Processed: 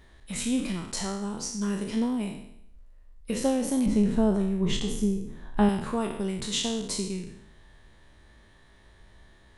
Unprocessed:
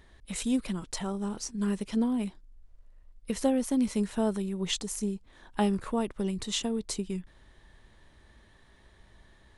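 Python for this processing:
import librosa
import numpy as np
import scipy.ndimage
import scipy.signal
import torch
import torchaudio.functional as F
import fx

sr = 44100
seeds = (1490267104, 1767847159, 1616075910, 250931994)

y = fx.spec_trails(x, sr, decay_s=0.74)
y = fx.tilt_eq(y, sr, slope=-2.5, at=(3.86, 5.69))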